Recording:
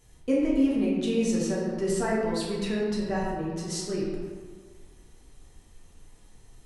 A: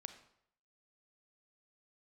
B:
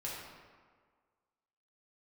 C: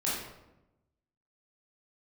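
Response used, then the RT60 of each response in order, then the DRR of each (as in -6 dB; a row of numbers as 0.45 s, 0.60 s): B; 0.70 s, 1.7 s, 0.95 s; 8.5 dB, -6.5 dB, -7.5 dB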